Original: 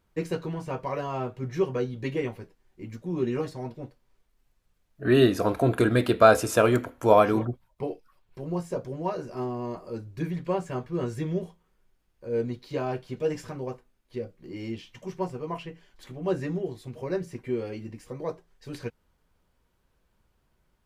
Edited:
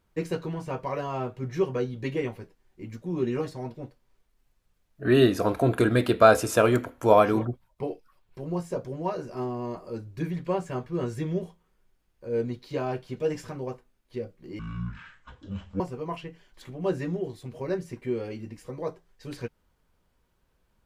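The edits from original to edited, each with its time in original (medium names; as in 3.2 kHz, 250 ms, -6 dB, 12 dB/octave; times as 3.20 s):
14.59–15.22 s: speed 52%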